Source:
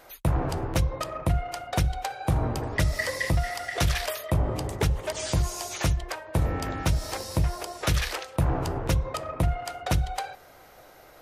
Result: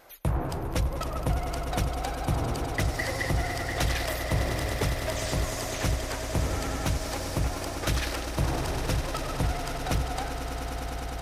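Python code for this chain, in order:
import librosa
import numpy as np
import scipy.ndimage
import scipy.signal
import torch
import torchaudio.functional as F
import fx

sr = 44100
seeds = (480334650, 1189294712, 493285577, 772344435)

y = fx.vibrato(x, sr, rate_hz=14.0, depth_cents=71.0)
y = fx.echo_swell(y, sr, ms=101, loudest=8, wet_db=-12.0)
y = F.gain(torch.from_numpy(y), -3.0).numpy()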